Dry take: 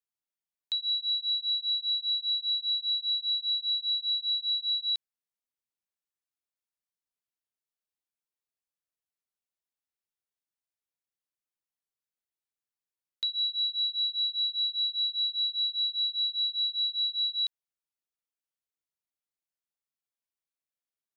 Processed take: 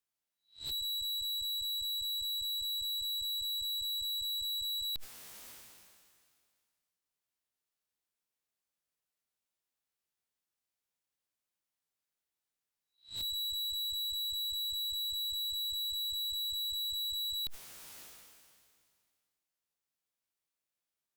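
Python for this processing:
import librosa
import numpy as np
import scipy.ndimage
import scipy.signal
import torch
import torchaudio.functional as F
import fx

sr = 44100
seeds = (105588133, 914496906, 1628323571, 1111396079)

y = fx.spec_swells(x, sr, rise_s=0.3)
y = fx.tube_stage(y, sr, drive_db=42.0, bias=0.75)
y = fx.sustainer(y, sr, db_per_s=27.0)
y = y * librosa.db_to_amplitude(6.5)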